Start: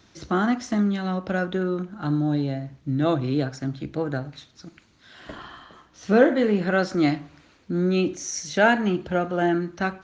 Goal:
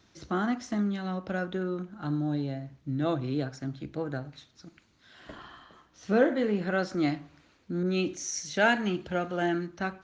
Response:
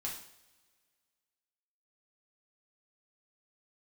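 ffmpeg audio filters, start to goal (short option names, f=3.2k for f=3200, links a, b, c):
-filter_complex "[0:a]asettb=1/sr,asplit=3[a][b][c];[a]atrim=end=7.834[d];[b]atrim=start=7.83:end=9.67,asetpts=PTS-STARTPTS,afade=t=in:d=0.004:c=qsin,afade=t=out:st=1.836:d=0.004:c=qsin,adynamicequalizer=threshold=0.02:dfrequency=1700:dqfactor=0.7:tfrequency=1700:tqfactor=0.7:attack=5:release=100:ratio=0.375:range=3:mode=boostabove:tftype=highshelf[e];[c]atrim=start=9.666[f];[d][e]acrossfade=d=0.004:c1=hsin:c2=qsin[g];[g][f]acrossfade=d=0.004:c1=qsin:c2=hsin,volume=-6.5dB"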